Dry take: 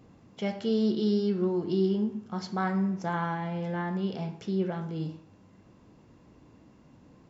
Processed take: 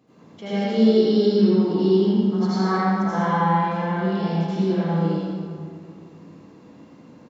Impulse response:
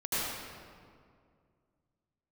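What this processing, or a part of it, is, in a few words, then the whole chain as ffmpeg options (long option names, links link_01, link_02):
PA in a hall: -filter_complex "[0:a]highpass=160,equalizer=frequency=4000:width_type=o:width=0.21:gain=4,aecho=1:1:85:0.531[link_01];[1:a]atrim=start_sample=2205[link_02];[link_01][link_02]afir=irnorm=-1:irlink=0"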